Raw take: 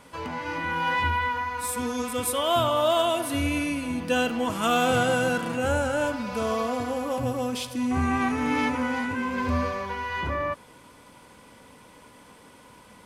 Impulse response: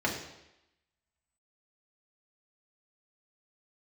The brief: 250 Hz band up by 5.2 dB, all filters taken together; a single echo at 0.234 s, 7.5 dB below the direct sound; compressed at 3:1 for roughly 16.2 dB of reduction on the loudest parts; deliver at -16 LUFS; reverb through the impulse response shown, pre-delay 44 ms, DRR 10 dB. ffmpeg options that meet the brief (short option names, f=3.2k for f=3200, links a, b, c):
-filter_complex "[0:a]equalizer=f=250:t=o:g=5.5,acompressor=threshold=-41dB:ratio=3,aecho=1:1:234:0.422,asplit=2[a][b];[1:a]atrim=start_sample=2205,adelay=44[c];[b][c]afir=irnorm=-1:irlink=0,volume=-20dB[d];[a][d]amix=inputs=2:normalize=0,volume=22.5dB"